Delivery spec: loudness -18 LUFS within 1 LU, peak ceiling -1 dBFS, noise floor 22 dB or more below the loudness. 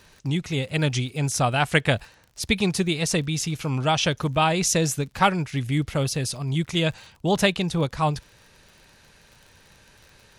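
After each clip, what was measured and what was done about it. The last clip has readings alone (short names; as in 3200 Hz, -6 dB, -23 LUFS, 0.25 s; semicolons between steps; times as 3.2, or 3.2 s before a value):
ticks 43/s; loudness -24.0 LUFS; peak -5.0 dBFS; loudness target -18.0 LUFS
-> de-click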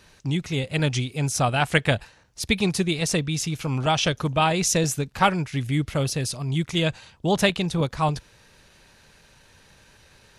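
ticks 0/s; loudness -24.0 LUFS; peak -5.0 dBFS; loudness target -18.0 LUFS
-> gain +6 dB; limiter -1 dBFS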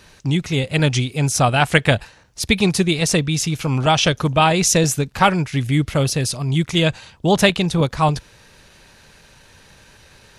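loudness -18.0 LUFS; peak -1.0 dBFS; noise floor -50 dBFS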